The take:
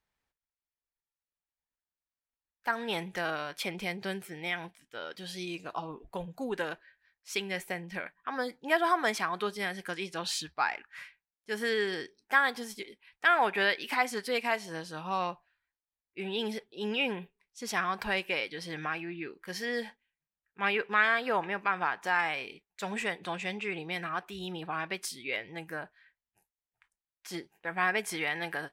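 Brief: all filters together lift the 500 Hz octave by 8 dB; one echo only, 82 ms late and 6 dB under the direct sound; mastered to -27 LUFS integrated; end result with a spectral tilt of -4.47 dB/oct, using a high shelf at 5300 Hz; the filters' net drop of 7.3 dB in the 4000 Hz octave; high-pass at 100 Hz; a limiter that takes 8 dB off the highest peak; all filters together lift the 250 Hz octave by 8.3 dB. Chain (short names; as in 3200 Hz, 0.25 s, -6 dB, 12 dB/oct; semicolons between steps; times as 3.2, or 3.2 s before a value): HPF 100 Hz; bell 250 Hz +9 dB; bell 500 Hz +7.5 dB; bell 4000 Hz -7.5 dB; high shelf 5300 Hz -8 dB; limiter -19 dBFS; echo 82 ms -6 dB; gain +4 dB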